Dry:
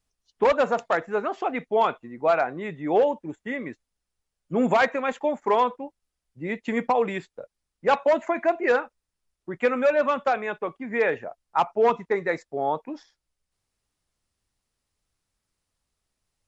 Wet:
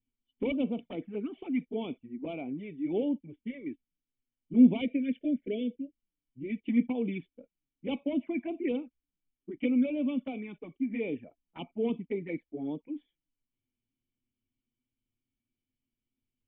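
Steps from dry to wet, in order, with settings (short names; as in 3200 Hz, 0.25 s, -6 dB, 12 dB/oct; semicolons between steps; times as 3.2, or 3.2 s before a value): envelope flanger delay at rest 8.3 ms, full sweep at -19.5 dBFS; spectral delete 4.81–6.58, 680–1400 Hz; vocal tract filter i; gain +7.5 dB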